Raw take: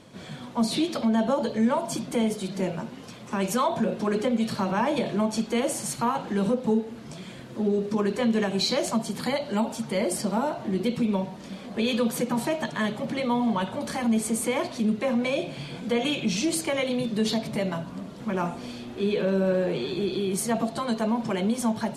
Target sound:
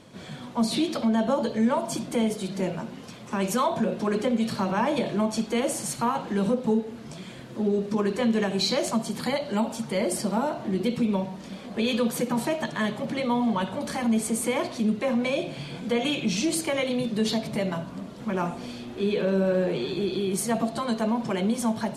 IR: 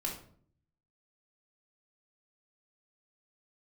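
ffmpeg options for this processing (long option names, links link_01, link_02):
-filter_complex "[0:a]asplit=2[link_01][link_02];[1:a]atrim=start_sample=2205,adelay=62[link_03];[link_02][link_03]afir=irnorm=-1:irlink=0,volume=-21dB[link_04];[link_01][link_04]amix=inputs=2:normalize=0"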